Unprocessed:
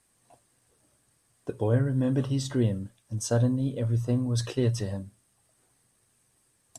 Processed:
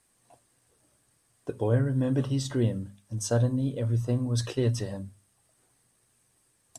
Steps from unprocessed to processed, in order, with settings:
mains-hum notches 50/100/150/200/250 Hz

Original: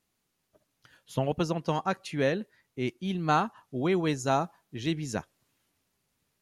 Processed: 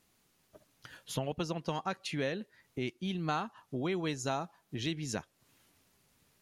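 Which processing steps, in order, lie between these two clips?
dynamic equaliser 3,600 Hz, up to +5 dB, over −47 dBFS, Q 0.72
downward compressor 2.5 to 1, threshold −46 dBFS, peak gain reduction 17.5 dB
level +7 dB

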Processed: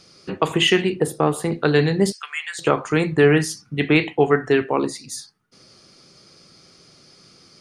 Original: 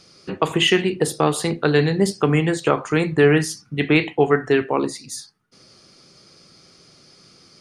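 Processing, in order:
0:01.00–0:01.52: parametric band 4,500 Hz −12.5 dB 1.6 octaves
0:02.12–0:02.59: high-pass filter 1,500 Hz 24 dB per octave

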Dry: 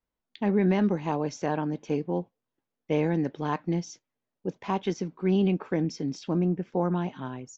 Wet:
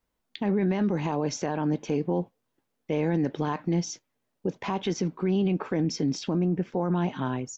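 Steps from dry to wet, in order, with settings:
brickwall limiter −25.5 dBFS, peak gain reduction 11.5 dB
level +7.5 dB

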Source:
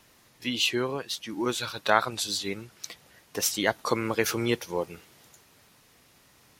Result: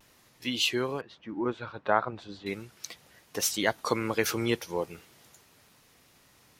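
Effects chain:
0:01.01–0:02.46: low-pass filter 1,400 Hz 12 dB per octave
pitch vibrato 0.39 Hz 17 cents
level −1.5 dB

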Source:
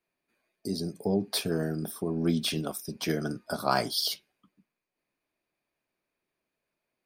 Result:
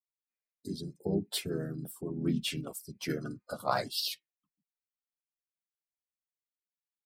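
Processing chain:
spectral dynamics exaggerated over time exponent 1.5
pitch-shifted copies added −3 semitones −4 dB
level −4 dB

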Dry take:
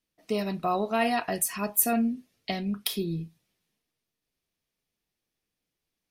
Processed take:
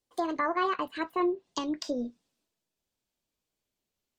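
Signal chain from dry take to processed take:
gliding playback speed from 166% → 126%
treble cut that deepens with the level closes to 1,900 Hz, closed at −24 dBFS
level −1 dB

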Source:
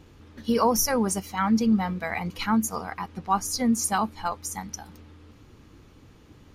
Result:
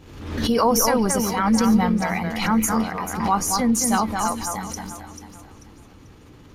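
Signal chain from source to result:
transient designer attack −1 dB, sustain +5 dB
on a send: delay that swaps between a low-pass and a high-pass 220 ms, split 2,200 Hz, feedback 56%, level −4.5 dB
on the sum: amplitude modulation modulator 250 Hz, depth 15%
background raised ahead of every attack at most 61 dB per second
level +4 dB

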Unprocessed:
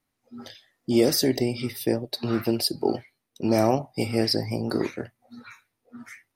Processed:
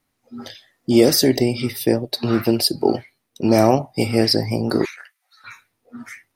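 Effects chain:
0:04.85–0:05.44: high-pass filter 1,300 Hz 24 dB per octave
level +6.5 dB

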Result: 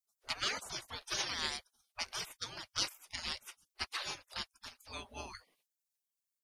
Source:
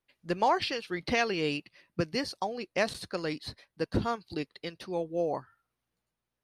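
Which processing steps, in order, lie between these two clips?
high-shelf EQ 4,100 Hz −6 dB
gate on every frequency bin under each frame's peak −30 dB weak
level +13.5 dB

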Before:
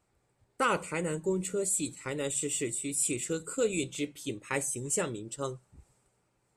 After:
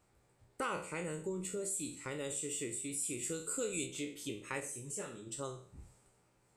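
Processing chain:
peak hold with a decay on every bin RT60 0.39 s
downward compressor 2 to 1, threshold −46 dBFS, peak gain reduction 13.5 dB
0:03.23–0:03.85: high-shelf EQ 8,300 Hz → 4,500 Hz +9 dB
0:04.60–0:05.27: micro pitch shift up and down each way 43 cents
level +1 dB

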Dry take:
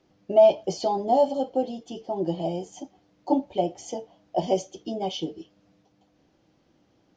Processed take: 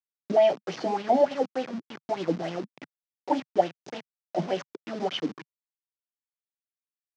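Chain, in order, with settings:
hold until the input has moved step −30 dBFS
Chebyshev band-pass filter 150–5,700 Hz, order 3
auto-filter bell 3.4 Hz 200–3,100 Hz +13 dB
level −5 dB

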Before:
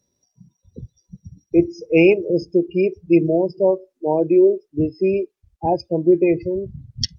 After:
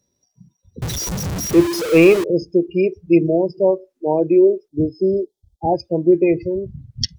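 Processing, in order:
0:00.82–0:02.24: converter with a step at zero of −19.5 dBFS
0:04.68–0:05.74: linear-phase brick-wall band-stop 930–3,100 Hz
level +1 dB

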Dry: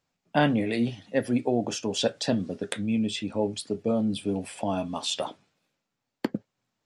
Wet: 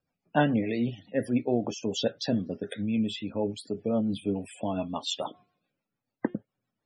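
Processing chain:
0:05.22–0:06.35: hum removal 358.5 Hz, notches 11
spectral peaks only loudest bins 64
rotating-speaker cabinet horn 7 Hz

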